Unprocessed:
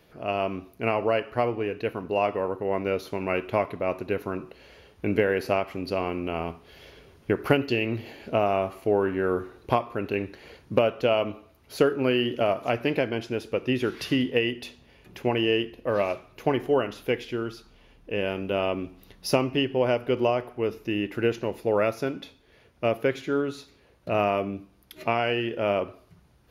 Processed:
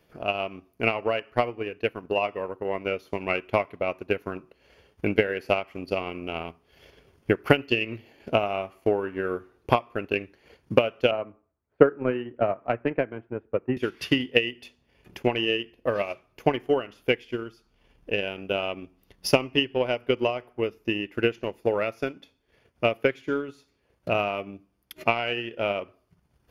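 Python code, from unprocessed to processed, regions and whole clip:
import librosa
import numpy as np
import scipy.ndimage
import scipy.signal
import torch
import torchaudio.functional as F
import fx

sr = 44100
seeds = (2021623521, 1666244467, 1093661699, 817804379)

y = fx.chain(x, sr, fx.lowpass(hz=1800.0, slope=24),
    fx.band_widen(depth_pct=70), at=(11.11, 13.77))
y = fx.notch(y, sr, hz=3900.0, q=8.8)
y = fx.dynamic_eq(y, sr, hz=2600.0, q=1.0, threshold_db=-42.0, ratio=4.0, max_db=6)
y = fx.transient(y, sr, attack_db=9, sustain_db=-7)
y = y * 10.0 ** (-5.5 / 20.0)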